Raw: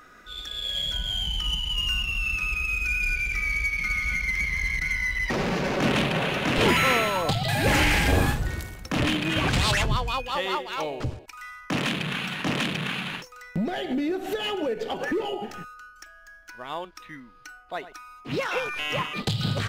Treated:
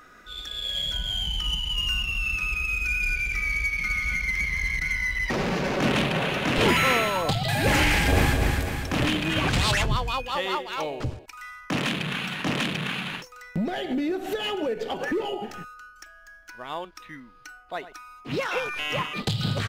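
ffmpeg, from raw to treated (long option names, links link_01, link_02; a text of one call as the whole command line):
ffmpeg -i in.wav -filter_complex "[0:a]asplit=2[link_01][link_02];[link_02]afade=type=in:start_time=7.91:duration=0.01,afade=type=out:start_time=8.39:duration=0.01,aecho=0:1:250|500|750|1000|1250|1500|1750|2000:0.562341|0.337405|0.202443|0.121466|0.0728794|0.0437277|0.0262366|0.015742[link_03];[link_01][link_03]amix=inputs=2:normalize=0" out.wav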